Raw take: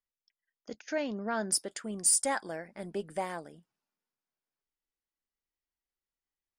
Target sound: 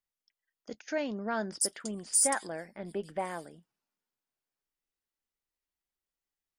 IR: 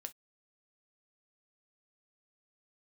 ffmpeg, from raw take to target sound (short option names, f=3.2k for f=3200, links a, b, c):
-filter_complex "[0:a]asettb=1/sr,asplit=3[a][b][c];[a]atrim=end=1.514[d];[b]atrim=start=1.51:end=3.51,asetpts=PTS-STARTPTS,afade=t=in:d=0.004:c=qsin,afade=t=out:st=1.996:d=0.004:c=qsin,acrossover=split=3900[e][f];[f]adelay=90[g];[e][g]amix=inputs=2:normalize=0,atrim=end_sample=88200[h];[c]atrim=start=3.506[i];[d][h]acrossfade=d=0.004:c1=hsin:c2=qsin[j];[j][i]acrossfade=d=0.004:c1=qsin:c2=hsin" -ar 44100 -c:a aac -b:a 192k